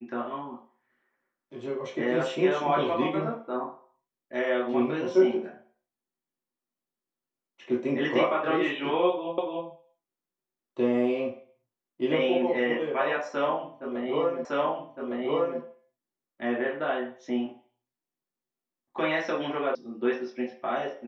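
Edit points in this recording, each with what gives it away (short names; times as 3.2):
9.38 repeat of the last 0.29 s
14.45 repeat of the last 1.16 s
19.75 sound cut off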